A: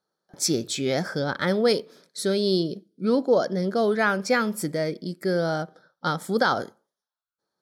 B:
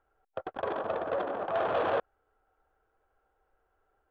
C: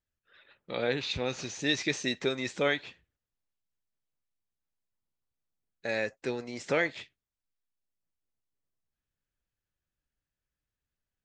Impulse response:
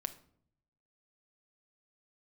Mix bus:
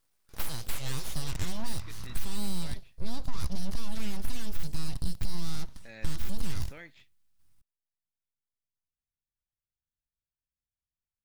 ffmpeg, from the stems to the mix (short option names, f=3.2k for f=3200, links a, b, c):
-filter_complex "[0:a]aexciter=amount=6.7:drive=4.4:freq=2.5k,asoftclip=type=tanh:threshold=-9dB,volume=-4dB,asplit=2[a][b];[1:a]aeval=exprs='val(0)*sin(2*PI*56*n/s)':c=same,adelay=700,volume=-10.5dB[c];[2:a]lowshelf=f=200:g=-11,volume=-14dB[d];[b]apad=whole_len=495688[e];[d][e]sidechaincompress=threshold=-25dB:ratio=8:attack=16:release=1060[f];[a][c]amix=inputs=2:normalize=0,aeval=exprs='abs(val(0))':c=same,acompressor=threshold=-30dB:ratio=6,volume=0dB[g];[f][g]amix=inputs=2:normalize=0,asubboost=boost=8:cutoff=170,asoftclip=type=tanh:threshold=-15.5dB"